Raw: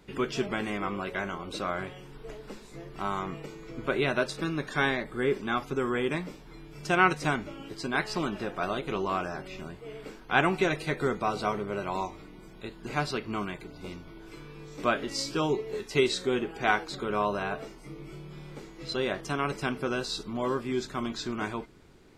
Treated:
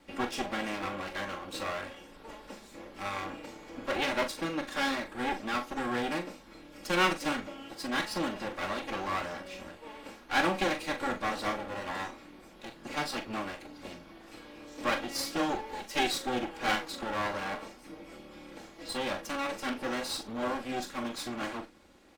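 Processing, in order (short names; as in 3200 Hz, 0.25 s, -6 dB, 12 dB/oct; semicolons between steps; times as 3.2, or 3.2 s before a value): minimum comb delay 3.6 ms; low shelf 130 Hz -8.5 dB; doubler 41 ms -9 dB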